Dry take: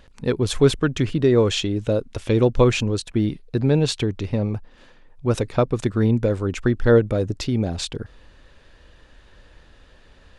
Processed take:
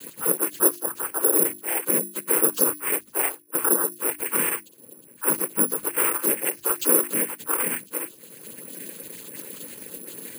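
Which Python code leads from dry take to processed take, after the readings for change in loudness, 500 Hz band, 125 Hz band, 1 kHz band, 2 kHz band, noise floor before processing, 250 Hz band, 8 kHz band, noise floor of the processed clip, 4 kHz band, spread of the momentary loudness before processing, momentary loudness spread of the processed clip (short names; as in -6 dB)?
-0.5 dB, -9.0 dB, -25.0 dB, +0.5 dB, +1.0 dB, -52 dBFS, -10.5 dB, +14.5 dB, -51 dBFS, -11.0 dB, 9 LU, 18 LU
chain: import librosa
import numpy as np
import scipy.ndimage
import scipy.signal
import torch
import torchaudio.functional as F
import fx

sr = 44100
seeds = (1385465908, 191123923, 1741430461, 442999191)

p1 = fx.octave_mirror(x, sr, pivot_hz=410.0)
p2 = fx.env_lowpass(p1, sr, base_hz=2200.0, full_db=-16.5)
p3 = scipy.signal.sosfilt(scipy.signal.butter(2, 170.0, 'highpass', fs=sr, output='sos'), p2)
p4 = fx.rider(p3, sr, range_db=10, speed_s=2.0)
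p5 = p3 + (p4 * 10.0 ** (-0.5 / 20.0))
p6 = fx.fixed_phaser(p5, sr, hz=300.0, stages=4)
p7 = fx.noise_vocoder(p6, sr, seeds[0], bands=8)
p8 = fx.hum_notches(p7, sr, base_hz=50, count=7)
p9 = (np.kron(scipy.signal.resample_poly(p8, 1, 4), np.eye(4)[0]) * 4)[:len(p8)]
p10 = fx.band_squash(p9, sr, depth_pct=70)
y = p10 * 10.0 ** (-9.5 / 20.0)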